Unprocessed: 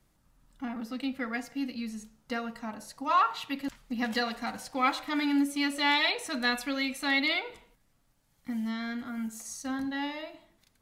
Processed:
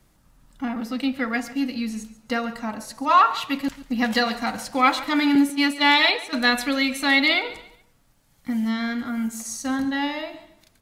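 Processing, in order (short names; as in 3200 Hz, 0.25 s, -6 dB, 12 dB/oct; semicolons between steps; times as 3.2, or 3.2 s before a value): 5.35–6.33 gate -31 dBFS, range -12 dB; on a send: feedback echo 0.14 s, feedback 31%, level -17 dB; on the sum: gain +8.5 dB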